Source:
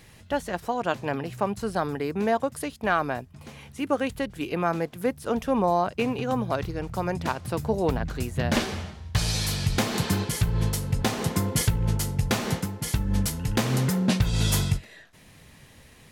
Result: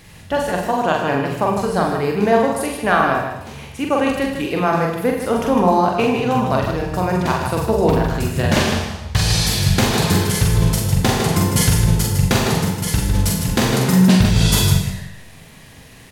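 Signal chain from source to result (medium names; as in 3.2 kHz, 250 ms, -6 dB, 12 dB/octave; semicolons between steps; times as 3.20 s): loudspeakers at several distances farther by 15 m -4 dB, 53 m -7 dB; Schroeder reverb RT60 0.83 s, combs from 33 ms, DRR 4 dB; trim +6 dB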